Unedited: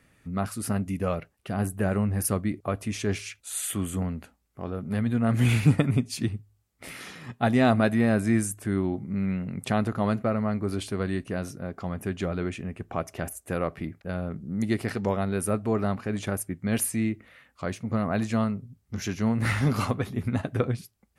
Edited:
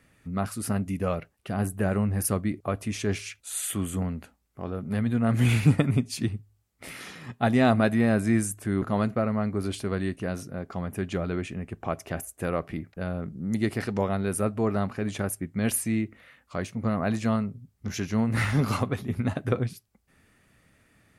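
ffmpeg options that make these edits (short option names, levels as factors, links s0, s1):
-filter_complex "[0:a]asplit=2[s0][s1];[s0]atrim=end=8.822[s2];[s1]atrim=start=9.898[s3];[s2][s3]acrossfade=d=0.004:c1=hsin:c2=hsin"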